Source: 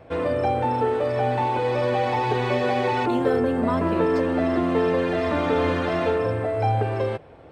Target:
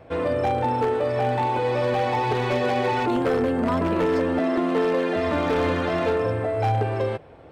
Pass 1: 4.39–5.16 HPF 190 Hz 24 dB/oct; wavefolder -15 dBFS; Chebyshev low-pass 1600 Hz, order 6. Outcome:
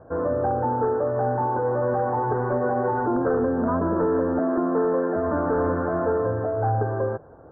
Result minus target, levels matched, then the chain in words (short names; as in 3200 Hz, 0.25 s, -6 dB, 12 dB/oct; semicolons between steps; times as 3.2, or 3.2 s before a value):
2000 Hz band -5.0 dB
4.39–5.16 HPF 190 Hz 24 dB/oct; wavefolder -15 dBFS